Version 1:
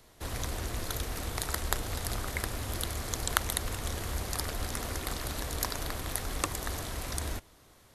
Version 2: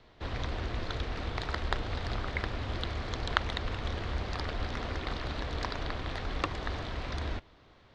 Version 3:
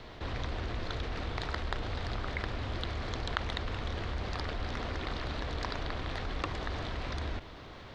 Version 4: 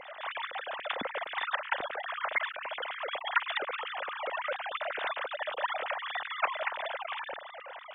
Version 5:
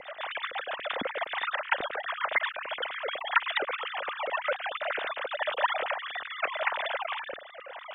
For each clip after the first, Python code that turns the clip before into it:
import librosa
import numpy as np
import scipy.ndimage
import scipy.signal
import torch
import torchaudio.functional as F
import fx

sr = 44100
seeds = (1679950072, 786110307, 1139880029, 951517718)

y1 = scipy.signal.sosfilt(scipy.signal.butter(4, 4100.0, 'lowpass', fs=sr, output='sos'), x)
y1 = y1 * 10.0 ** (1.0 / 20.0)
y2 = fx.env_flatten(y1, sr, amount_pct=50)
y2 = y2 * 10.0 ** (-6.0 / 20.0)
y3 = fx.sine_speech(y2, sr)
y4 = fx.rotary_switch(y3, sr, hz=8.0, then_hz=0.8, switch_at_s=4.26)
y4 = y4 * 10.0 ** (6.0 / 20.0)